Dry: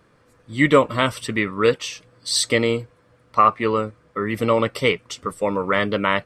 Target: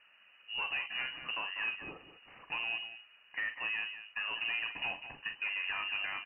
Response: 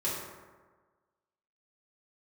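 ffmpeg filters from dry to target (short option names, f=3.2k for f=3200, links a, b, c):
-af "acompressor=threshold=-24dB:ratio=6,asoftclip=type=tanh:threshold=-25.5dB,aecho=1:1:43.73|195.3:0.355|0.282,lowpass=f=2.6k:t=q:w=0.5098,lowpass=f=2.6k:t=q:w=0.6013,lowpass=f=2.6k:t=q:w=0.9,lowpass=f=2.6k:t=q:w=2.563,afreqshift=-3000,volume=-6dB"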